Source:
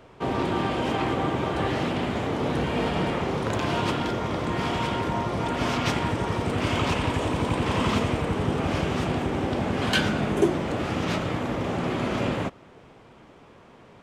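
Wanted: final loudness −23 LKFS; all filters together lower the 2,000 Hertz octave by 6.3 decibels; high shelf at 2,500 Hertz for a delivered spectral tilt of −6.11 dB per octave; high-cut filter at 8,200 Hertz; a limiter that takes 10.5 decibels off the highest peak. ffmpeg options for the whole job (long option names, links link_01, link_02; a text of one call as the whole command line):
ffmpeg -i in.wav -af "lowpass=8200,equalizer=frequency=2000:width_type=o:gain=-5.5,highshelf=frequency=2500:gain=-6,volume=7dB,alimiter=limit=-13.5dB:level=0:latency=1" out.wav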